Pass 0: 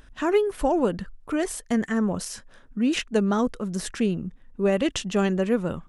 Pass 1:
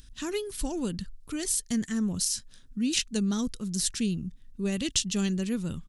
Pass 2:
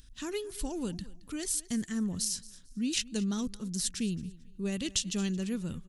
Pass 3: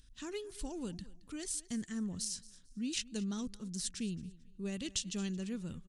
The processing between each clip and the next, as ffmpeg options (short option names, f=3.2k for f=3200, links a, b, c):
-af "firequalizer=gain_entry='entry(120,0);entry(570,-18);entry(4100,7)':delay=0.05:min_phase=1"
-af "aecho=1:1:222|444:0.1|0.026,volume=-4dB"
-af "aresample=22050,aresample=44100,volume=-6dB"